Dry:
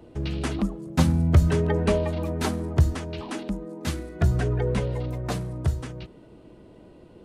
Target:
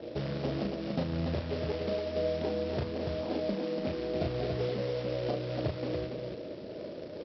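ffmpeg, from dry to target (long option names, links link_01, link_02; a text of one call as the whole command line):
ffmpeg -i in.wav -af "lowpass=frequency=570:width_type=q:width=4.9,aresample=11025,acrusher=bits=3:mode=log:mix=0:aa=0.000001,aresample=44100,highpass=100,acompressor=threshold=-31dB:ratio=10,aecho=1:1:34.99|285.7:0.631|0.631" out.wav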